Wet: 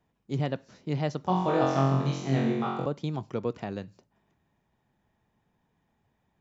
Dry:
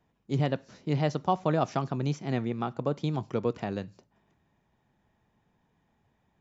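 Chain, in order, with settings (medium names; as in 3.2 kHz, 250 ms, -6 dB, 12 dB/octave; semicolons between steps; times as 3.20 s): 1.24–2.86 s: flutter echo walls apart 3.8 m, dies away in 0.96 s; trim -2 dB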